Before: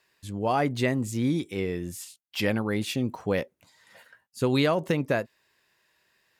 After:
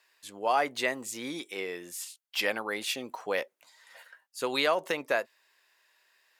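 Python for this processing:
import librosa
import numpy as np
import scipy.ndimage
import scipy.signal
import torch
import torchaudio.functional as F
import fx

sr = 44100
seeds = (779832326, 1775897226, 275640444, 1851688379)

y = scipy.signal.sosfilt(scipy.signal.butter(2, 620.0, 'highpass', fs=sr, output='sos'), x)
y = y * 10.0 ** (1.5 / 20.0)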